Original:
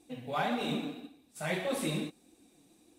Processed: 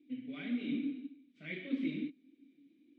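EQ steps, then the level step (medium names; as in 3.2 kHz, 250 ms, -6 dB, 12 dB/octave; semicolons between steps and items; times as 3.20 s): vowel filter i; distance through air 210 m; +6.5 dB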